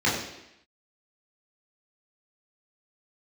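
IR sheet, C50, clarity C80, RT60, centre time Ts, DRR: 4.0 dB, 6.5 dB, 0.85 s, 48 ms, −7.5 dB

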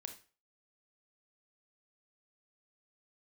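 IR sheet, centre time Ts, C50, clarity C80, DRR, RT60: 12 ms, 10.0 dB, 15.5 dB, 5.5 dB, 0.40 s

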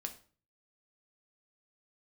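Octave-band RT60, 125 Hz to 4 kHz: 0.65, 0.50, 0.45, 0.40, 0.35, 0.35 seconds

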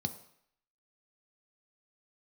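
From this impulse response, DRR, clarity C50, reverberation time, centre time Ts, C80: 7.5 dB, 13.5 dB, 0.65 s, 8 ms, 15.5 dB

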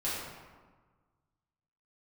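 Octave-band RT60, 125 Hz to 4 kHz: 2.0, 1.6, 1.4, 1.5, 1.1, 0.80 seconds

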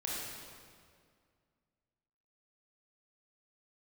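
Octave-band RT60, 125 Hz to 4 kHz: 2.5, 2.4, 2.2, 2.0, 1.8, 1.6 seconds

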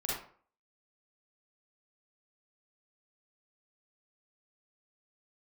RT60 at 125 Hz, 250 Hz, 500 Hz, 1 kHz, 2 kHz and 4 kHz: 0.45, 0.45, 0.50, 0.50, 0.40, 0.30 seconds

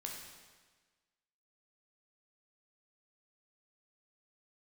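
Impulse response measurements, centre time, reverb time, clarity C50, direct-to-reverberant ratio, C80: 61 ms, 1.4 s, 2.5 dB, −0.5 dB, 4.5 dB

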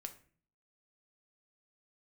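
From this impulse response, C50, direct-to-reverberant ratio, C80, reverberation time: 13.0 dB, 5.5 dB, 18.0 dB, 0.45 s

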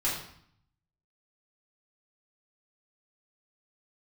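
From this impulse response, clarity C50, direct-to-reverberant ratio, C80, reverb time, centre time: 4.0 dB, −8.0 dB, 7.0 dB, 0.65 s, 43 ms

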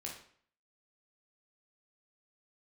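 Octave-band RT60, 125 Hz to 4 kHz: 0.55, 0.55, 0.55, 0.55, 0.55, 0.45 seconds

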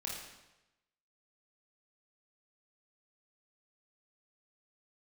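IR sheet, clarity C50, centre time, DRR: 1.0 dB, 60 ms, −3.0 dB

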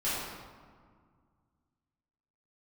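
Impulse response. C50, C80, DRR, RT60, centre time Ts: −2.5 dB, 0.5 dB, −11.5 dB, 1.9 s, 109 ms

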